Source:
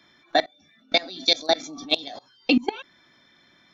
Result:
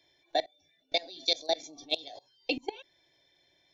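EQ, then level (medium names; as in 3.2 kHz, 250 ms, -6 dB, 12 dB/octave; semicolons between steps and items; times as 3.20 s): static phaser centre 530 Hz, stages 4; -6.5 dB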